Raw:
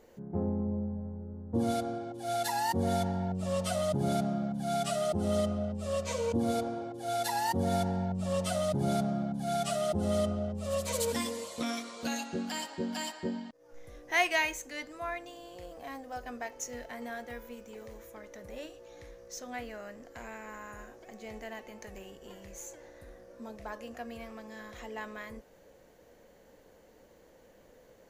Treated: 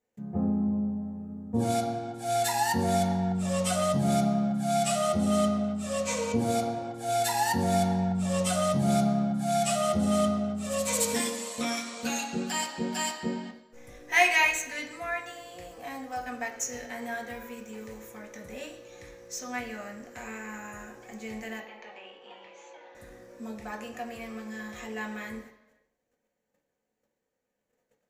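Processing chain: gate -54 dBFS, range -27 dB; 21.6–22.95 speaker cabinet 500–3700 Hz, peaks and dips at 880 Hz +7 dB, 1800 Hz -5 dB, 3300 Hz +4 dB; reverb RT60 1.0 s, pre-delay 3 ms, DRR 0.5 dB; gain +4.5 dB

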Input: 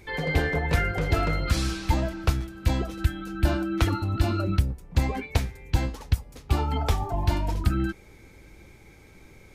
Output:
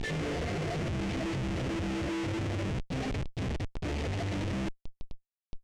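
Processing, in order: treble ducked by the level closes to 1000 Hz, closed at -22.5 dBFS; plain phase-vocoder stretch 0.59×; HPF 93 Hz 24 dB/oct; high shelf 9200 Hz +10.5 dB; in parallel at -2.5 dB: compressor 5:1, threshold -43 dBFS, peak gain reduction 16 dB; on the sum: Schmitt trigger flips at -40.5 dBFS; elliptic band-stop 720–1800 Hz; hard clip -38 dBFS, distortion -10 dB; air absorption 100 m; gain +6.5 dB

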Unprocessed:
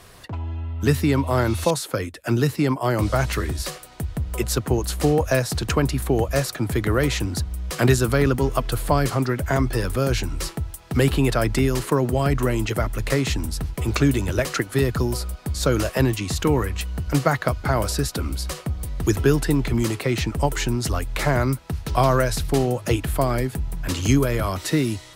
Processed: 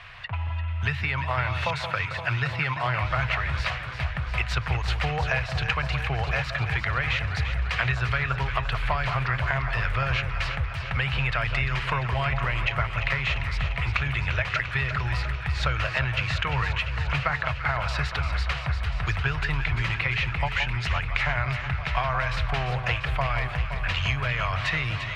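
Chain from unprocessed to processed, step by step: EQ curve 130 Hz 0 dB, 290 Hz -25 dB, 690 Hz -1 dB, 2500 Hz +12 dB, 11000 Hz -29 dB; compressor, threshold -23 dBFS, peak gain reduction 11.5 dB; on a send: echo with dull and thin repeats by turns 0.173 s, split 1300 Hz, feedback 85%, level -7.5 dB

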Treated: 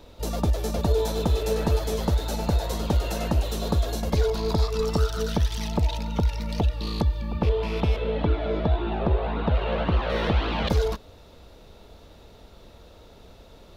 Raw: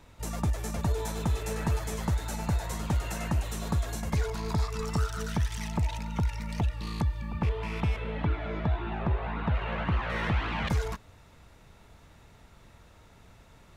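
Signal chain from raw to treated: graphic EQ 125/500/1000/2000/4000/8000 Hz -8/+6/-4/-9/+6/-9 dB; gain +7.5 dB

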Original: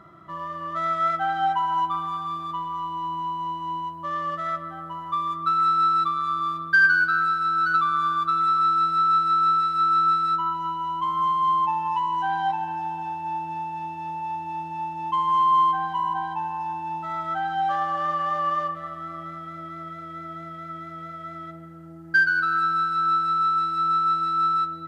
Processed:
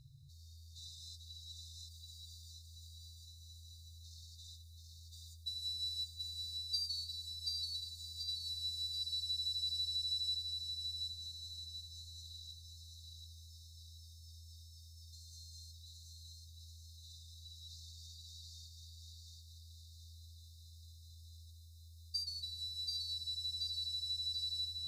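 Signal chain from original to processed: thinning echo 0.732 s, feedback 47%, level -3 dB; FFT band-reject 150–3600 Hz; gain +3 dB

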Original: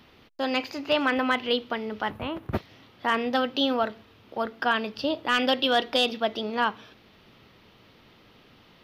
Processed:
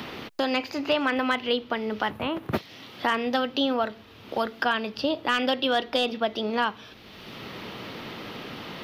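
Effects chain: three-band squash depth 70%

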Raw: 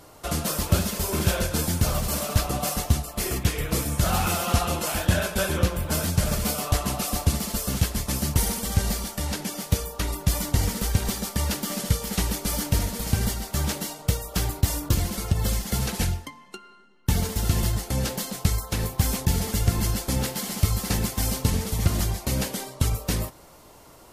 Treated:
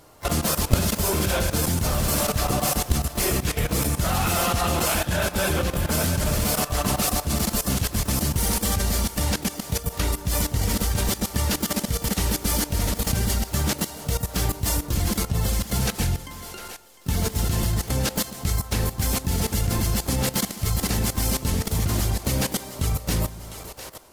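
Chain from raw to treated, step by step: split-band echo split 390 Hz, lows 0.144 s, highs 0.704 s, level -13.5 dB; level quantiser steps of 15 dB; harmoniser +7 st -12 dB; gain +7.5 dB

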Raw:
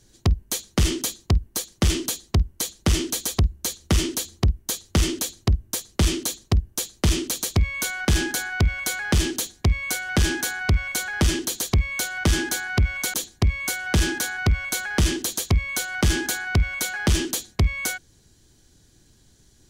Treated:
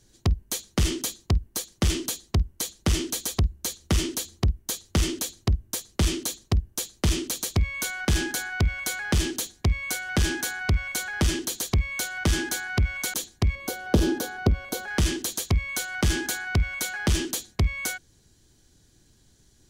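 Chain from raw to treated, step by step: 13.55–14.88 graphic EQ 250/500/2000/8000 Hz +6/+9/-9/-7 dB; gain -3 dB

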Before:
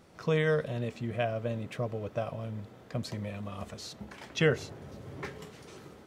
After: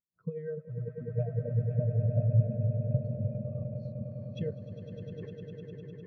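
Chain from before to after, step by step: low shelf 190 Hz +3.5 dB; de-hum 79.52 Hz, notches 27; transient shaper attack +7 dB, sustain -2 dB; compressor 2.5:1, threshold -33 dBFS, peak gain reduction 11 dB; on a send: swelling echo 0.101 s, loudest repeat 8, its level -5 dB; on the sum: spectral expander 2.5:1; gain +2.5 dB

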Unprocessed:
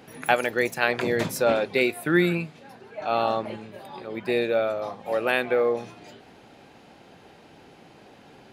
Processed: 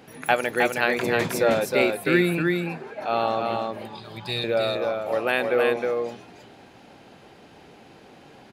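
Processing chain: 2.67–2.93 spectral gain 220–2600 Hz +9 dB; 3.95–4.44 graphic EQ 125/250/500/1000/2000/4000/8000 Hz +10/-9/-12/+3/-8/+11/+4 dB; on a send: echo 0.314 s -3.5 dB

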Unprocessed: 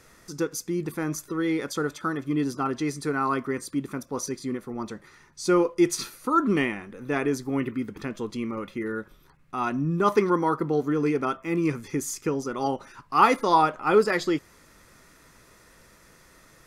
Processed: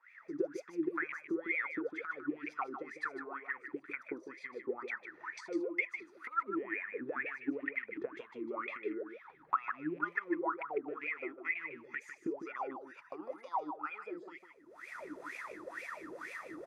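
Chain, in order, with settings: rattling part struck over -28 dBFS, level -29 dBFS; recorder AGC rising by 38 dB/s; bell 1900 Hz +11.5 dB 1.5 oct, from 12.62 s 11000 Hz; transient shaper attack +7 dB, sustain +2 dB; compressor 2:1, threshold -16 dBFS, peak gain reduction 7.5 dB; wah 2.1 Hz 300–2400 Hz, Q 17; echo 0.152 s -9 dB; gain -4.5 dB

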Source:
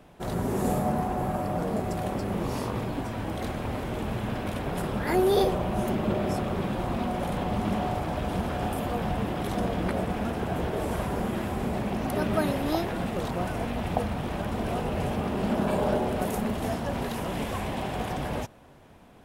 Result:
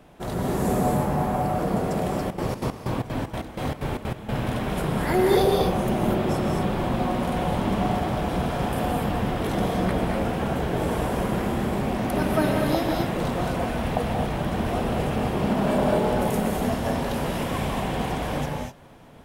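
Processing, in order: non-linear reverb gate 0.27 s rising, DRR 0.5 dB; 2.18–4.31 step gate "xx.xx.x.." 189 bpm -12 dB; gain +1.5 dB

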